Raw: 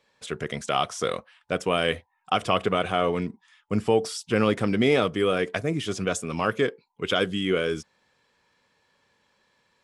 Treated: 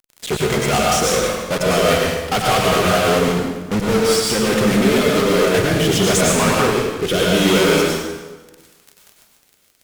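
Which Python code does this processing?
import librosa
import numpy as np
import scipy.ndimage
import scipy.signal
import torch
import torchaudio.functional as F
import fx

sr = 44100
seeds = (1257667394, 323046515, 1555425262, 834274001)

y = fx.level_steps(x, sr, step_db=9, at=(2.98, 5.19))
y = fx.dmg_crackle(y, sr, seeds[0], per_s=300.0, level_db=-42.0)
y = fx.fuzz(y, sr, gain_db=47.0, gate_db=-38.0)
y = fx.rotary_switch(y, sr, hz=5.0, then_hz=0.75, switch_at_s=4.93)
y = fx.rev_plate(y, sr, seeds[1], rt60_s=1.3, hf_ratio=0.8, predelay_ms=85, drr_db=-3.0)
y = F.gain(torch.from_numpy(y), -2.0).numpy()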